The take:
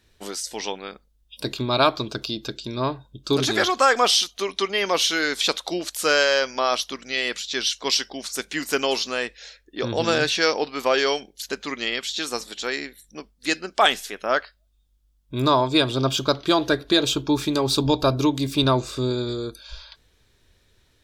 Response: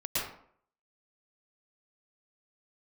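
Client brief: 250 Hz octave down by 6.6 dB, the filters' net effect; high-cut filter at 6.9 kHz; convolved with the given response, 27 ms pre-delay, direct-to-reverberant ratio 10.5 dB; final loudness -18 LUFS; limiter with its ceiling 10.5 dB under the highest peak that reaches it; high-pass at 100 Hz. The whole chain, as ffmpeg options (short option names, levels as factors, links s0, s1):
-filter_complex "[0:a]highpass=100,lowpass=6900,equalizer=f=250:t=o:g=-9,alimiter=limit=0.224:level=0:latency=1,asplit=2[s0][s1];[1:a]atrim=start_sample=2205,adelay=27[s2];[s1][s2]afir=irnorm=-1:irlink=0,volume=0.133[s3];[s0][s3]amix=inputs=2:normalize=0,volume=2.51"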